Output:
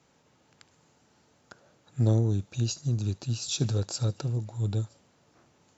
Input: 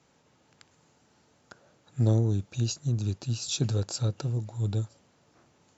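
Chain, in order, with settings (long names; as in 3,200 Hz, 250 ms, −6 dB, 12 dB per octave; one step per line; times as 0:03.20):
delay with a high-pass on its return 74 ms, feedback 45%, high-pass 3,700 Hz, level −17.5 dB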